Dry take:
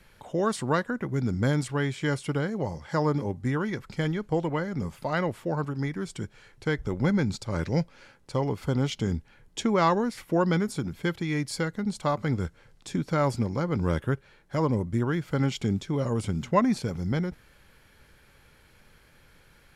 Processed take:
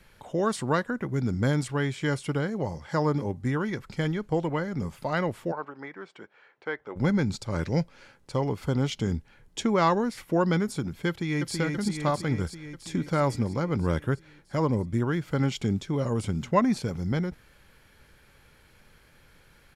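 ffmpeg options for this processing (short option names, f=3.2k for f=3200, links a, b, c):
-filter_complex "[0:a]asplit=3[a][b][c];[a]afade=t=out:st=5.51:d=0.02[d];[b]highpass=520,lowpass=2.1k,afade=t=in:st=5.51:d=0.02,afade=t=out:st=6.95:d=0.02[e];[c]afade=t=in:st=6.95:d=0.02[f];[d][e][f]amix=inputs=3:normalize=0,asplit=2[g][h];[h]afade=t=in:st=11.08:d=0.01,afade=t=out:st=11.55:d=0.01,aecho=0:1:330|660|990|1320|1650|1980|2310|2640|2970|3300|3630|3960:0.630957|0.44167|0.309169|0.216418|0.151493|0.106045|0.0742315|0.0519621|0.0363734|0.0254614|0.017823|0.0124761[i];[g][i]amix=inputs=2:normalize=0"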